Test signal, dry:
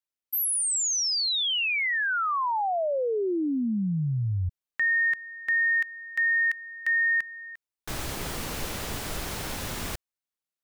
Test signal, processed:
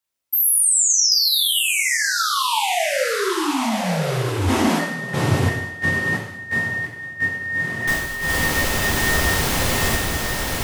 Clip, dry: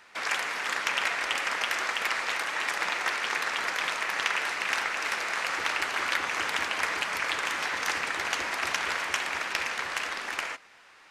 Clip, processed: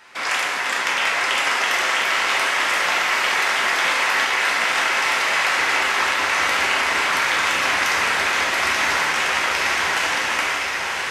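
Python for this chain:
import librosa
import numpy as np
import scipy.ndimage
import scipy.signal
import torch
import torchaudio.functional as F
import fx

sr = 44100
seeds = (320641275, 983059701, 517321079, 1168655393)

y = fx.echo_diffused(x, sr, ms=1067, feedback_pct=51, wet_db=-3.0)
y = fx.over_compress(y, sr, threshold_db=-27.0, ratio=-0.5)
y = fx.rev_gated(y, sr, seeds[0], gate_ms=250, shape='falling', drr_db=-1.5)
y = y * librosa.db_to_amplitude(4.5)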